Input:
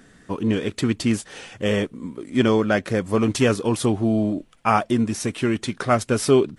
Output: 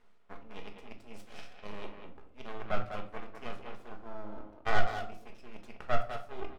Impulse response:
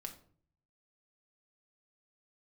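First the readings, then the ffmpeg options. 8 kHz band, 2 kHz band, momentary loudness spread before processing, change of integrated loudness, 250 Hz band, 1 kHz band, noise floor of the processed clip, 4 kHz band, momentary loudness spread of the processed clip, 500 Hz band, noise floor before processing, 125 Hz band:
−29.5 dB, −11.5 dB, 7 LU, −17.5 dB, −28.0 dB, −12.5 dB, −55 dBFS, −17.0 dB, 19 LU, −19.0 dB, −55 dBFS, −21.0 dB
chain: -filter_complex "[0:a]bass=frequency=250:gain=10,treble=frequency=4000:gain=4,areverse,acompressor=threshold=-27dB:ratio=10,areverse,asplit=3[link_01][link_02][link_03];[link_01]bandpass=frequency=730:width_type=q:width=8,volume=0dB[link_04];[link_02]bandpass=frequency=1090:width_type=q:width=8,volume=-6dB[link_05];[link_03]bandpass=frequency=2440:width_type=q:width=8,volume=-9dB[link_06];[link_04][link_05][link_06]amix=inputs=3:normalize=0,asoftclip=type=tanh:threshold=-33.5dB,aeval=exprs='0.0398*(cos(1*acos(clip(val(0)/0.0398,-1,1)))-cos(1*PI/2))+0.0126*(cos(4*acos(clip(val(0)/0.0398,-1,1)))-cos(4*PI/2))+0.00447*(cos(7*acos(clip(val(0)/0.0398,-1,1)))-cos(7*PI/2))':channel_layout=same,aeval=exprs='abs(val(0))':channel_layout=same,asplit=2[link_07][link_08];[link_08]adelay=200,highpass=300,lowpass=3400,asoftclip=type=hard:threshold=-38.5dB,volume=-6dB[link_09];[link_07][link_09]amix=inputs=2:normalize=0[link_10];[1:a]atrim=start_sample=2205[link_11];[link_10][link_11]afir=irnorm=-1:irlink=0,volume=15.5dB"

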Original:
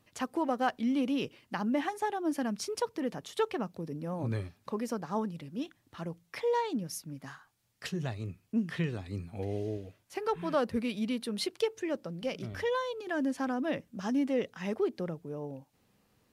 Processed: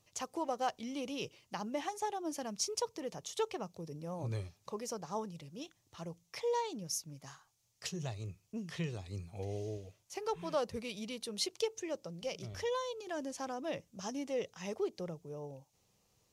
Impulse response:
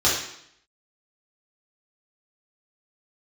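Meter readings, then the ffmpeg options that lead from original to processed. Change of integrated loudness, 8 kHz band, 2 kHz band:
−5.5 dB, +4.5 dB, −8.0 dB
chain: -af "equalizer=frequency=250:width_type=o:width=0.67:gain=-11,equalizer=frequency=1600:width_type=o:width=0.67:gain=-8,equalizer=frequency=6300:width_type=o:width=0.67:gain=10,volume=-3dB"

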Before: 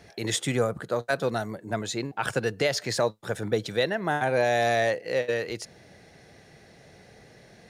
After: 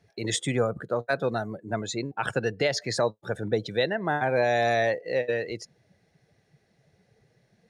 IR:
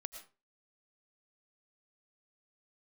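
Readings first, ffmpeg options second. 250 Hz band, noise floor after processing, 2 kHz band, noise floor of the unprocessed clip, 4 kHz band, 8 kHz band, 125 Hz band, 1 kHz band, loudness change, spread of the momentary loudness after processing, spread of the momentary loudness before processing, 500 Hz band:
0.0 dB, −69 dBFS, −0.5 dB, −54 dBFS, −1.0 dB, −1.5 dB, 0.0 dB, 0.0 dB, 0.0 dB, 9 LU, 9 LU, 0.0 dB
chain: -af "afftdn=noise_reduction=16:noise_floor=-38"

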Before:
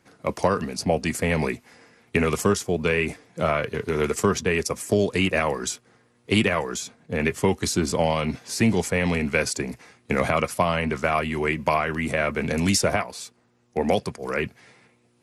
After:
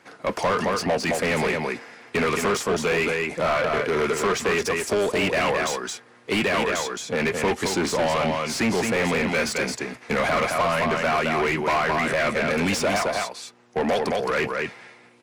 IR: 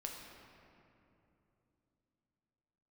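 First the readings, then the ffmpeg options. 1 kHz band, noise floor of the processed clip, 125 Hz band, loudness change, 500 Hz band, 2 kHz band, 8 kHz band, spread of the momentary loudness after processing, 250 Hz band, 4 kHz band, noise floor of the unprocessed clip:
+3.0 dB, −52 dBFS, −4.5 dB, +1.0 dB, +1.5 dB, +3.0 dB, −1.0 dB, 6 LU, −1.5 dB, +2.0 dB, −63 dBFS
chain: -filter_complex "[0:a]aecho=1:1:217:0.447,asplit=2[link_01][link_02];[link_02]highpass=frequency=720:poles=1,volume=27dB,asoftclip=type=tanh:threshold=-5.5dB[link_03];[link_01][link_03]amix=inputs=2:normalize=0,lowpass=frequency=2700:poles=1,volume=-6dB,volume=-8dB"

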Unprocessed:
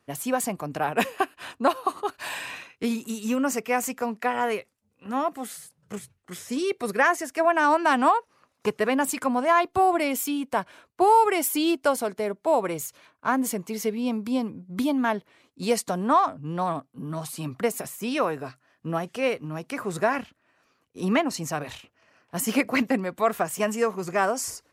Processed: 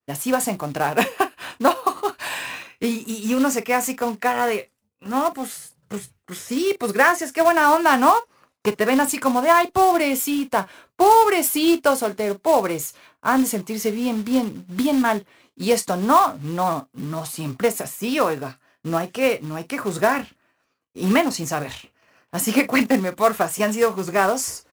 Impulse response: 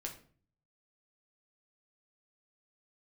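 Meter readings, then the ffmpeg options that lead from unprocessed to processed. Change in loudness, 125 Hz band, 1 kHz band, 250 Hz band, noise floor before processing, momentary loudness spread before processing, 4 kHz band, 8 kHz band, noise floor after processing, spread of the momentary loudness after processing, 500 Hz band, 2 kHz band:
+5.0 dB, +4.5 dB, +4.5 dB, +5.0 dB, −71 dBFS, 12 LU, +6.0 dB, +5.5 dB, −70 dBFS, 12 LU, +5.0 dB, +5.0 dB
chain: -af "agate=range=-33dB:threshold=-58dB:ratio=3:detection=peak,aecho=1:1:15|42:0.251|0.168,acrusher=bits=4:mode=log:mix=0:aa=0.000001,volume=4.5dB"

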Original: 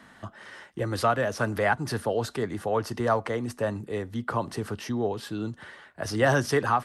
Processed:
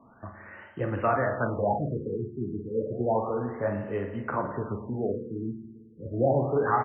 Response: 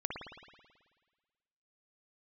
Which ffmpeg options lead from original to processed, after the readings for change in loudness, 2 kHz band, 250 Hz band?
−1.5 dB, −7.0 dB, −0.5 dB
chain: -filter_complex "[0:a]asplit=2[link_01][link_02];[link_02]adelay=40,volume=-8dB[link_03];[link_01][link_03]amix=inputs=2:normalize=0,flanger=delay=6.7:depth=9.1:regen=-47:speed=1.3:shape=triangular,asplit=2[link_04][link_05];[1:a]atrim=start_sample=2205,lowpass=3100[link_06];[link_05][link_06]afir=irnorm=-1:irlink=0,volume=-2.5dB[link_07];[link_04][link_07]amix=inputs=2:normalize=0,afftfilt=real='re*lt(b*sr/1024,420*pow(3200/420,0.5+0.5*sin(2*PI*0.31*pts/sr)))':imag='im*lt(b*sr/1024,420*pow(3200/420,0.5+0.5*sin(2*PI*0.31*pts/sr)))':win_size=1024:overlap=0.75,volume=-2dB"

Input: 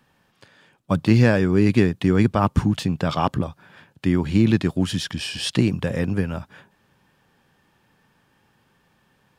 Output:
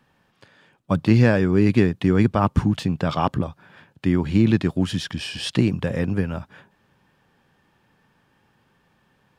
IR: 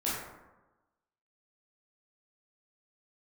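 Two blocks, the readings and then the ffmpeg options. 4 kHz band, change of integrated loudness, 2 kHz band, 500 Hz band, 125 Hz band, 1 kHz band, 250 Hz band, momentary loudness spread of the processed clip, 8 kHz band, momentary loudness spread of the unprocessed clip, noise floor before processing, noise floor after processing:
−2.0 dB, 0.0 dB, −0.5 dB, 0.0 dB, 0.0 dB, 0.0 dB, 0.0 dB, 11 LU, −4.0 dB, 10 LU, −64 dBFS, −65 dBFS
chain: -af "highshelf=frequency=5000:gain=-6"

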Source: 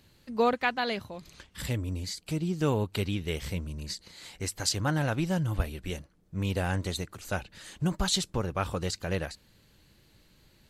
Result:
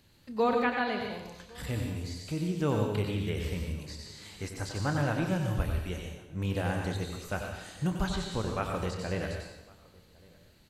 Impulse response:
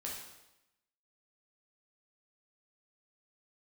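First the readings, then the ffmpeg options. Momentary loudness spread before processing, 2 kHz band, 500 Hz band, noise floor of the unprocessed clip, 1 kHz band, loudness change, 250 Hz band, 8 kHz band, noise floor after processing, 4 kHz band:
12 LU, −1.5 dB, −0.5 dB, −63 dBFS, −0.5 dB, −1.5 dB, −0.5 dB, −9.5 dB, −59 dBFS, −7.0 dB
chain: -filter_complex "[0:a]asplit=2[link_01][link_02];[link_02]adelay=28,volume=-12.5dB[link_03];[link_01][link_03]amix=inputs=2:normalize=0,asplit=2[link_04][link_05];[link_05]adelay=1108,volume=-25dB,highshelf=frequency=4000:gain=-24.9[link_06];[link_04][link_06]amix=inputs=2:normalize=0,asplit=2[link_07][link_08];[1:a]atrim=start_sample=2205,adelay=92[link_09];[link_08][link_09]afir=irnorm=-1:irlink=0,volume=-2.5dB[link_10];[link_07][link_10]amix=inputs=2:normalize=0,acrossover=split=2500[link_11][link_12];[link_12]acompressor=threshold=-42dB:ratio=4:attack=1:release=60[link_13];[link_11][link_13]amix=inputs=2:normalize=0,volume=-2.5dB"

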